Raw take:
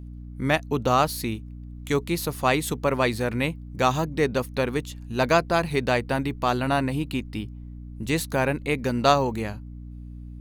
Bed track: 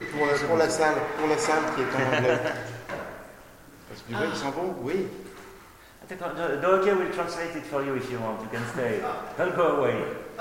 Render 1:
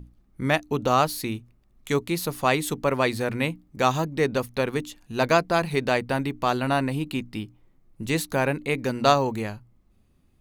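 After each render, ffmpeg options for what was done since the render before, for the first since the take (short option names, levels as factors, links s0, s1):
-af "bandreject=f=60:t=h:w=6,bandreject=f=120:t=h:w=6,bandreject=f=180:t=h:w=6,bandreject=f=240:t=h:w=6,bandreject=f=300:t=h:w=6"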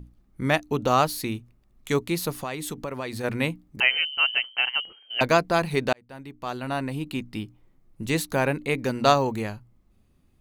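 -filter_complex "[0:a]asplit=3[s0][s1][s2];[s0]afade=t=out:st=2.32:d=0.02[s3];[s1]acompressor=threshold=0.0355:ratio=4:attack=3.2:release=140:knee=1:detection=peak,afade=t=in:st=2.32:d=0.02,afade=t=out:st=3.23:d=0.02[s4];[s2]afade=t=in:st=3.23:d=0.02[s5];[s3][s4][s5]amix=inputs=3:normalize=0,asettb=1/sr,asplit=3[s6][s7][s8];[s6]atrim=end=3.804[s9];[s7]atrim=start=3.8:end=5.21,asetpts=PTS-STARTPTS,afade=t=in:d=0.004:c=qsin,afade=t=out:st=1.406:d=0.004:c=qsin,lowpass=f=2700:t=q:w=0.5098,lowpass=f=2700:t=q:w=0.6013,lowpass=f=2700:t=q:w=0.9,lowpass=f=2700:t=q:w=2.563,afreqshift=-3200[s10];[s8]atrim=start=5.206[s11];[s9][s10]acrossfade=d=0.004:c1=hsin:c2=qsin[s12];[s12][s11]acrossfade=d=0.004:c1=qsin:c2=hsin,asplit=2[s13][s14];[s13]atrim=end=5.93,asetpts=PTS-STARTPTS,afade=t=out:st=5.926:d=0.004:c=hsin[s15];[s14]atrim=start=5.93,asetpts=PTS-STARTPTS,afade=t=in:d=1.5[s16];[s15][s16]concat=n=2:v=0:a=1"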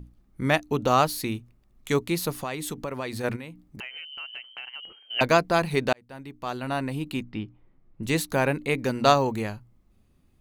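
-filter_complex "[0:a]asplit=3[s0][s1][s2];[s0]afade=t=out:st=3.35:d=0.02[s3];[s1]acompressor=threshold=0.0126:ratio=4:attack=3.2:release=140:knee=1:detection=peak,afade=t=in:st=3.35:d=0.02,afade=t=out:st=4.82:d=0.02[s4];[s2]afade=t=in:st=4.82:d=0.02[s5];[s3][s4][s5]amix=inputs=3:normalize=0,asettb=1/sr,asplit=3[s6][s7][s8];[s6]atrim=end=7.234[s9];[s7]atrim=start=7.23:end=8.03,asetpts=PTS-STARTPTS,afade=t=in:d=0.004:c=qsin,afade=t=out:st=0.796:d=0.004:c=qsin,lowpass=2800[s10];[s8]atrim=start=8.026[s11];[s9][s10]acrossfade=d=0.004:c1=hsin:c2=qsin[s12];[s12][s11]acrossfade=d=0.004:c1=qsin:c2=hsin"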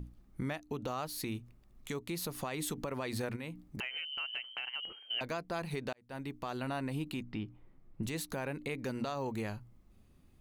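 -af "acompressor=threshold=0.0224:ratio=4,alimiter=level_in=1.41:limit=0.0631:level=0:latency=1:release=76,volume=0.708"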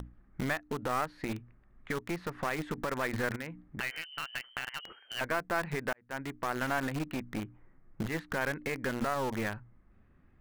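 -filter_complex "[0:a]lowpass=f=1700:t=q:w=2.9,asplit=2[s0][s1];[s1]acrusher=bits=3:dc=4:mix=0:aa=0.000001,volume=0.708[s2];[s0][s2]amix=inputs=2:normalize=0"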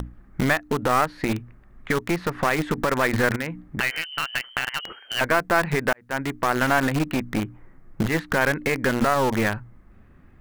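-af "volume=3.76"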